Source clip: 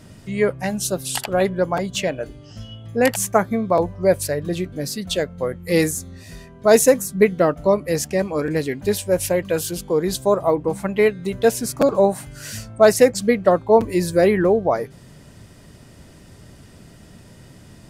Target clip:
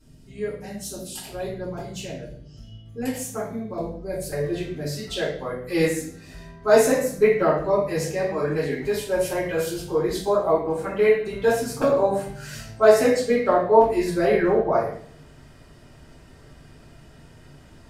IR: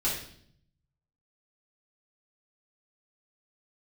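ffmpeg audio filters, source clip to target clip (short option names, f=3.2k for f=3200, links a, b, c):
-filter_complex "[0:a]asetnsamples=n=441:p=0,asendcmd='4.32 equalizer g 8.5',equalizer=f=1.2k:t=o:w=2.8:g=-7[a];[1:a]atrim=start_sample=2205,asetrate=48510,aresample=44100[b];[a][b]afir=irnorm=-1:irlink=0,volume=-15dB"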